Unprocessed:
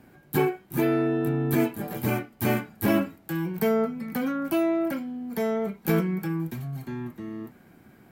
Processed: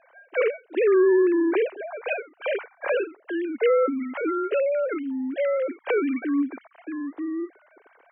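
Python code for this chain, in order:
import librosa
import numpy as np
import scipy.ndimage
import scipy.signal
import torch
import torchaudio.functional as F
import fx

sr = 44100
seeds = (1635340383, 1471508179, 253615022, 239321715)

y = fx.sine_speech(x, sr)
y = fx.brickwall_highpass(y, sr, low_hz=240.0)
y = fx.record_warp(y, sr, rpm=45.0, depth_cents=100.0)
y = y * 10.0 ** (2.5 / 20.0)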